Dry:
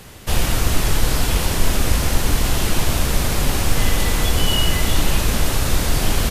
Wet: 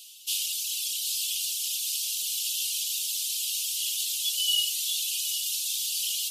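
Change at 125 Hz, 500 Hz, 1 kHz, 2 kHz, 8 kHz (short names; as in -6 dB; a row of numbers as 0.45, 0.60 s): under -40 dB, under -40 dB, under -40 dB, -17.0 dB, -2.0 dB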